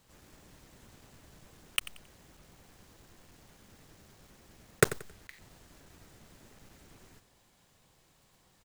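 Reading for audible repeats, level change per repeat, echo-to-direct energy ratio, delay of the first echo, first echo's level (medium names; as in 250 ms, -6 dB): 2, -10.5 dB, -15.0 dB, 90 ms, -15.5 dB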